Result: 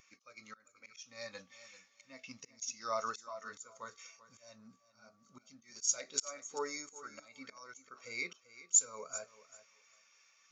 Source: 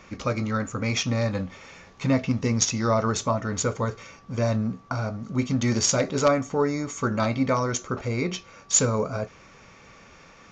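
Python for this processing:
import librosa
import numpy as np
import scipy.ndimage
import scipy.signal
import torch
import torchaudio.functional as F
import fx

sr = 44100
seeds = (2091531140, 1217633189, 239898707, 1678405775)

p1 = np.diff(x, prepend=0.0)
p2 = fx.auto_swell(p1, sr, attack_ms=383.0)
p3 = p2 + fx.echo_feedback(p2, sr, ms=390, feedback_pct=29, wet_db=-11.0, dry=0)
p4 = fx.spectral_expand(p3, sr, expansion=1.5)
y = F.gain(torch.from_numpy(p4), 7.0).numpy()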